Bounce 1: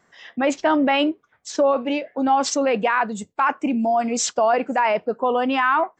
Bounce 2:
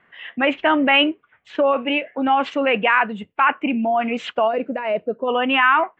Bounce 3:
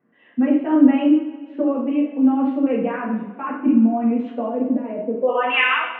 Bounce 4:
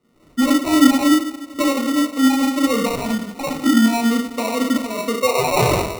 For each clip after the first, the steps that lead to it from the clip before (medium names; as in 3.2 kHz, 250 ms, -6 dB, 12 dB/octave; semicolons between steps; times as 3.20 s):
FFT filter 770 Hz 0 dB, 2.9 kHz +10 dB, 5.4 kHz -27 dB; time-frequency box 4.47–5.28 s, 700–3600 Hz -13 dB
band-pass sweep 280 Hz -> 2.8 kHz, 5.10–5.64 s; two-slope reverb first 0.6 s, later 2.3 s, from -17 dB, DRR -5 dB; trim +1 dB
in parallel at -6 dB: saturation -17.5 dBFS, distortion -9 dB; on the sum: sample-and-hold 27×; trim -1 dB